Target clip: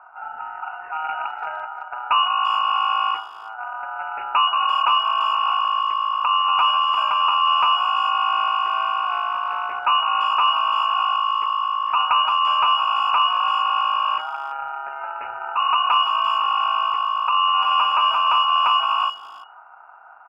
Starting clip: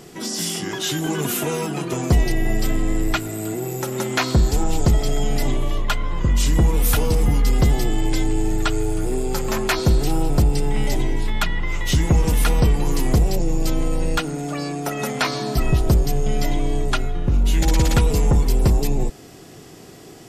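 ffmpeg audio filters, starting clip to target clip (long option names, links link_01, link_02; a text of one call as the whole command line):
ffmpeg -i in.wav -filter_complex "[0:a]asplit=3[link_01][link_02][link_03];[link_01]afade=type=out:start_time=1.64:duration=0.02[link_04];[link_02]agate=range=-33dB:threshold=-20dB:ratio=3:detection=peak,afade=type=in:start_time=1.64:duration=0.02,afade=type=out:start_time=3.58:duration=0.02[link_05];[link_03]afade=type=in:start_time=3.58:duration=0.02[link_06];[link_04][link_05][link_06]amix=inputs=3:normalize=0,firequalizer=gain_entry='entry(300,0);entry(860,-28);entry(1700,-15)':delay=0.05:min_phase=1,aeval=exprs='val(0)*sin(2*PI*1800*n/s)':channel_layout=same,aeval=exprs='clip(val(0),-1,0.0708)':channel_layout=same,aeval=exprs='0.398*(cos(1*acos(clip(val(0)/0.398,-1,1)))-cos(1*PI/2))+0.00891*(cos(3*acos(clip(val(0)/0.398,-1,1)))-cos(3*PI/2))+0.0141*(cos(4*acos(clip(val(0)/0.398,-1,1)))-cos(4*PI/2))':channel_layout=same,lowpass=frequency=2500:width_type=q:width=0.5098,lowpass=frequency=2500:width_type=q:width=0.6013,lowpass=frequency=2500:width_type=q:width=0.9,lowpass=frequency=2500:width_type=q:width=2.563,afreqshift=-2900,asplit=2[link_07][link_08];[link_08]adelay=340,highpass=300,lowpass=3400,asoftclip=type=hard:threshold=-21.5dB,volume=-18dB[link_09];[link_07][link_09]amix=inputs=2:normalize=0,volume=2.5dB" out.wav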